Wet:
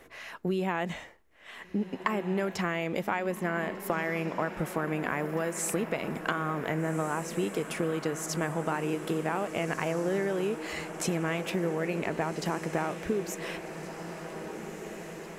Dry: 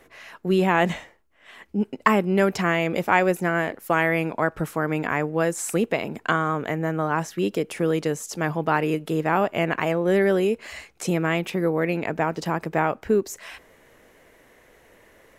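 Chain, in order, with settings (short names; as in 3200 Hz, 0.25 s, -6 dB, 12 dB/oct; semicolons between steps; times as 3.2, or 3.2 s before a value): compressor, threshold -27 dBFS, peak gain reduction 14 dB; on a send: diffused feedback echo 1.62 s, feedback 63%, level -10 dB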